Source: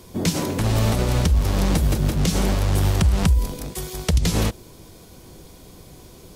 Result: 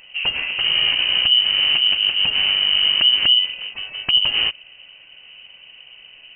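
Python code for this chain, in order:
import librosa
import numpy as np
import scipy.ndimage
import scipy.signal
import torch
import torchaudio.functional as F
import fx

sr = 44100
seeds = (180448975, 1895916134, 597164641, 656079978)

y = fx.freq_invert(x, sr, carrier_hz=3000)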